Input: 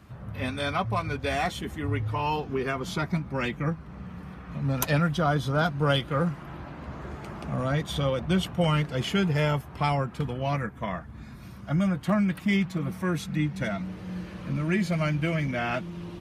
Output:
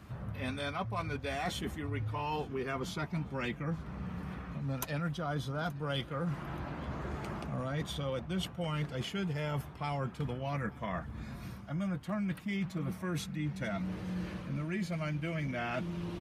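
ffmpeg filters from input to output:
-af "areverse,acompressor=threshold=0.0224:ratio=6,areverse,aecho=1:1:877|1754|2631:0.0708|0.0283|0.0113"

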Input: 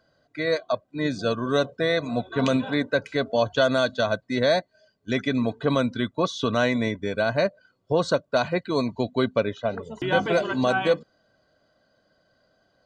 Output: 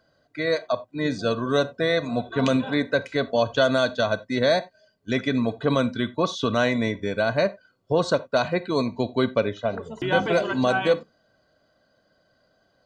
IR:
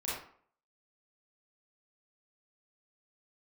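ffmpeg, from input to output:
-filter_complex "[0:a]asplit=2[s0][s1];[1:a]atrim=start_sample=2205,atrim=end_sample=4410[s2];[s1][s2]afir=irnorm=-1:irlink=0,volume=0.126[s3];[s0][s3]amix=inputs=2:normalize=0"

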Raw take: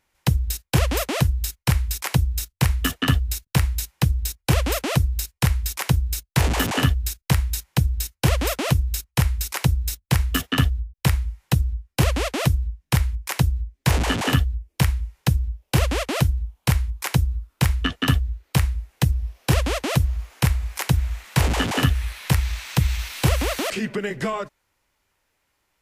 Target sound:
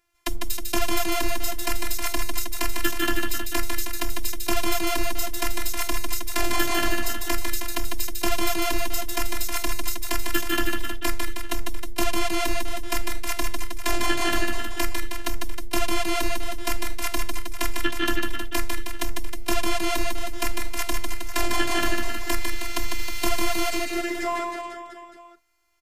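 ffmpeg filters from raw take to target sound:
-af "afftfilt=real='hypot(re,im)*cos(PI*b)':imag='0':win_size=512:overlap=0.75,aecho=1:1:150|315|496.5|696.2|915.8:0.631|0.398|0.251|0.158|0.1,volume=1.19"

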